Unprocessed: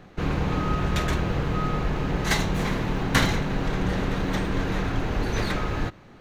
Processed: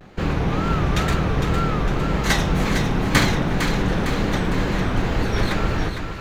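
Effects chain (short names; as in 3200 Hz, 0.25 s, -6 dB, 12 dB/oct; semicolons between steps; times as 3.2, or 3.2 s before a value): wow and flutter 140 cents; split-band echo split 860 Hz, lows 0.234 s, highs 0.456 s, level -7 dB; gain +3.5 dB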